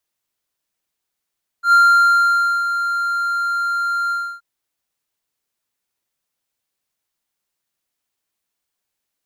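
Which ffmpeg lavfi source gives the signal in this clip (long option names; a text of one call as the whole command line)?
ffmpeg -f lavfi -i "aevalsrc='0.531*(1-4*abs(mod(1390*t+0.25,1)-0.5))':duration=2.776:sample_rate=44100,afade=type=in:duration=0.096,afade=type=out:start_time=0.096:duration=0.91:silence=0.316,afade=type=out:start_time=2.48:duration=0.296" out.wav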